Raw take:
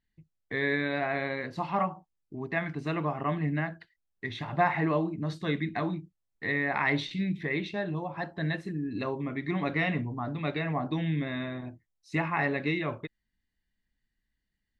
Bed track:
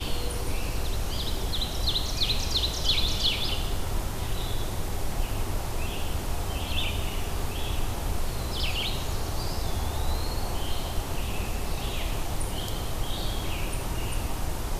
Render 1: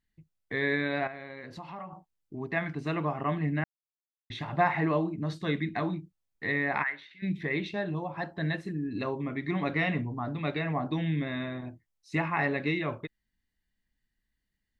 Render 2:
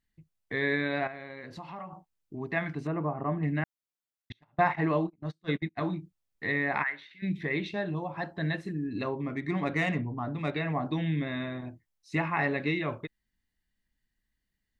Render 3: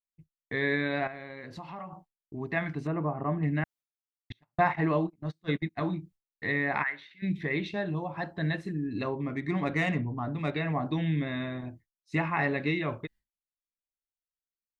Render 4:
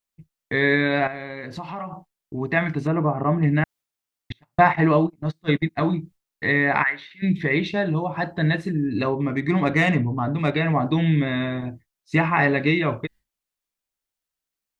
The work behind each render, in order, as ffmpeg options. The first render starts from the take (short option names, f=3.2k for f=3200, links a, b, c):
-filter_complex "[0:a]asettb=1/sr,asplit=3[a][b][c];[a]atrim=end=1.074[d];[b]atrim=start=1.07:end=1.93,asetpts=PTS-STARTPTS,afade=t=in:d=0.004:c=qsin,afade=t=out:st=0.856:d=0.004:c=qsin,acompressor=threshold=-40dB:ratio=4:attack=3.2:release=140:knee=1:detection=peak[e];[c]atrim=start=1.926[f];[d][e]acrossfade=d=0.004:c1=hsin:c2=qsin[g];[g][f]acrossfade=d=0.004:c1=qsin:c2=hsin,asplit=3[h][i][j];[h]afade=t=out:st=6.82:d=0.02[k];[i]bandpass=f=1.6k:t=q:w=3.2,afade=t=in:st=6.82:d=0.02,afade=t=out:st=7.22:d=0.02[l];[j]afade=t=in:st=7.22:d=0.02[m];[k][l][m]amix=inputs=3:normalize=0,asplit=3[n][o][p];[n]atrim=end=3.64,asetpts=PTS-STARTPTS,afade=t=out:st=3.636:d=0.004:c=hsin[q];[o]atrim=start=3.64:end=4.3,asetpts=PTS-STARTPTS,volume=0[r];[p]atrim=start=4.3,asetpts=PTS-STARTPTS,afade=t=in:d=0.004:c=hsin[s];[q][r][s]concat=n=3:v=0:a=1"
-filter_complex "[0:a]asettb=1/sr,asplit=3[a][b][c];[a]atrim=end=2.874[d];[b]atrim=start=2.87:end=3.43,asetpts=PTS-STARTPTS,afade=t=in:d=0.004:c=qsin,afade=t=out:st=0.556:d=0.004:c=qsin,lowpass=1.1k[e];[c]atrim=start=3.426[f];[d][e]acrossfade=d=0.004:c1=hsin:c2=qsin[g];[g][f]acrossfade=d=0.004:c1=qsin:c2=hsin,asettb=1/sr,asplit=3[h][i][j];[h]atrim=end=4.324[k];[i]atrim=start=4.32:end=5.81,asetpts=PTS-STARTPTS,afade=t=in:d=0.004:c=qsin,afade=t=out:st=1.486:d=0.004:c=qsin,agate=range=-33dB:threshold=-31dB:ratio=16:release=100:detection=peak[l];[j]atrim=start=5.806[m];[k][l]acrossfade=d=0.004:c1=hsin:c2=qsin[n];[n][m]acrossfade=d=0.004:c1=qsin:c2=hsin,asettb=1/sr,asplit=3[o][p][q];[o]atrim=end=9.084[r];[p]atrim=start=9.08:end=10.54,asetpts=PTS-STARTPTS,afade=t=in:d=0.004:c=qsin,afade=t=out:st=1.456:d=0.004:c=qsin,adynamicsmooth=sensitivity=4:basefreq=4k[s];[q]atrim=start=10.536[t];[r][s]acrossfade=d=0.004:c1=hsin:c2=qsin[u];[u][t]acrossfade=d=0.004:c1=qsin:c2=hsin"
-af "agate=range=-33dB:threshold=-50dB:ratio=3:detection=peak,lowshelf=f=91:g=5"
-af "volume=9dB"